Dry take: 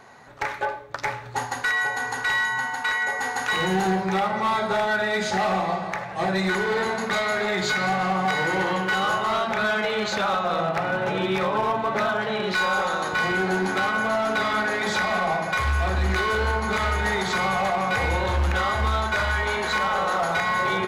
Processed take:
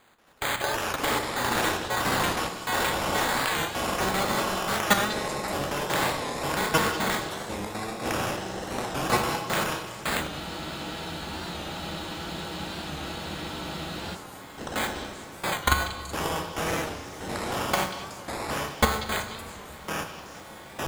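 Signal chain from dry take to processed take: spectral peaks clipped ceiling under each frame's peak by 14 dB; reverse; upward compressor, threshold -36 dBFS; reverse; peak limiter -17 dBFS, peak gain reduction 6 dB; level held to a coarse grid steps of 12 dB; gate with hold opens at -26 dBFS; sample-and-hold 8×; ever faster or slower copies 184 ms, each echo -5 st, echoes 3; repeats whose band climbs or falls 188 ms, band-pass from 3.9 kHz, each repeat 0.7 oct, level -7.5 dB; on a send at -8 dB: reverberation RT60 2.7 s, pre-delay 4 ms; on the sum: spectral freeze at 10.31 s, 3.85 s; warped record 45 rpm, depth 100 cents; trim +8.5 dB

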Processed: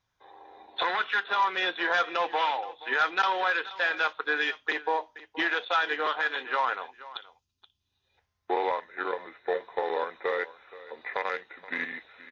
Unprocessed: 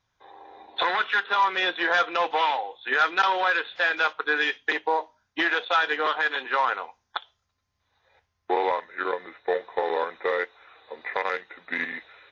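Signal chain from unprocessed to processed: time-frequency box 6.92–8.18 s, 420–2400 Hz -13 dB; on a send: delay 475 ms -18 dB; on the sum: trim -3.5 dB

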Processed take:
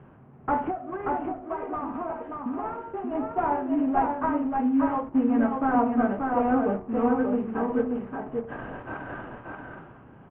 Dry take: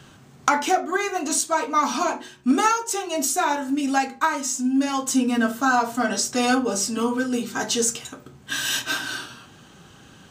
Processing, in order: CVSD coder 16 kbps; Chebyshev low-pass 870 Hz, order 2; de-hum 91.73 Hz, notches 16; 0.70–3.15 s: compression, threshold -30 dBFS, peak gain reduction 13.5 dB; delay 582 ms -3.5 dB

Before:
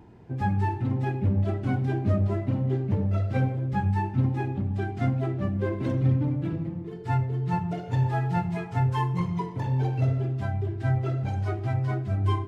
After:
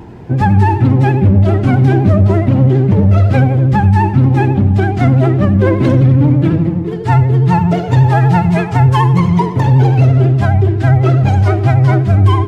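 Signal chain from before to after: vibrato 12 Hz 64 cents; loudness maximiser +19 dB; trim -1 dB

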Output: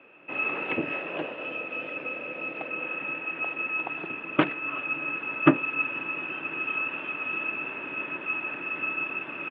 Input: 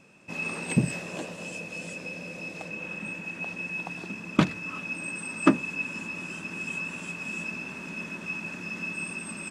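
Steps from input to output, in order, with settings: in parallel at -3 dB: saturation -15 dBFS, distortion -11 dB; on the sum: Chebyshev band-pass 290–3000 Hz, order 4; harmony voices -12 st -11 dB

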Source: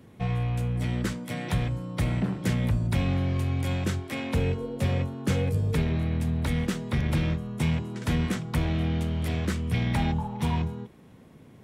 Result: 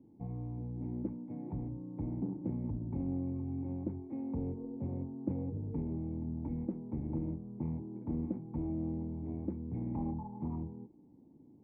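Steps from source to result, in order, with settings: cascade formant filter u; loudspeaker Doppler distortion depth 0.22 ms

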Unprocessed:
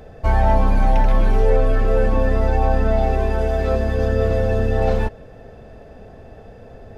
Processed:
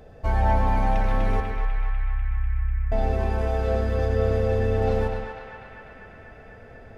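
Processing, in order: 1.40–2.92 s: inverse Chebyshev band-stop 390–3800 Hz, stop band 80 dB; band-passed feedback delay 247 ms, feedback 83%, band-pass 1.8 kHz, level -3 dB; on a send at -6 dB: reverberation RT60 0.55 s, pre-delay 92 ms; on the sum: trim -6.5 dB

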